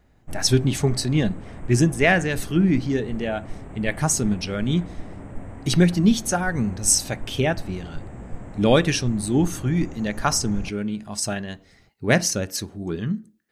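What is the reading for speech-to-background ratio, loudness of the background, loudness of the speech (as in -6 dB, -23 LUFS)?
17.0 dB, -39.5 LUFS, -22.5 LUFS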